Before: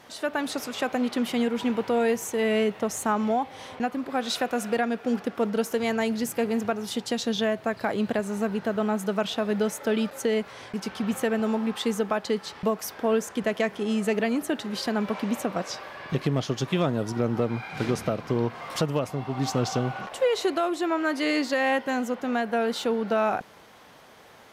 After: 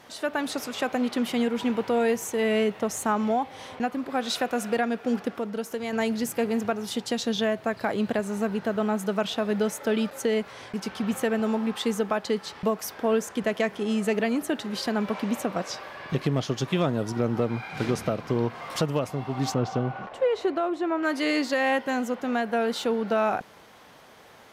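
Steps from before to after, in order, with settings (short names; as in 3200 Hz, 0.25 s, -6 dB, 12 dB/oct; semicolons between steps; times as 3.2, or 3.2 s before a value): 5.31–5.93 compressor 1.5:1, threshold -37 dBFS, peak gain reduction 6 dB; 19.54–21.03 LPF 1400 Hz 6 dB/oct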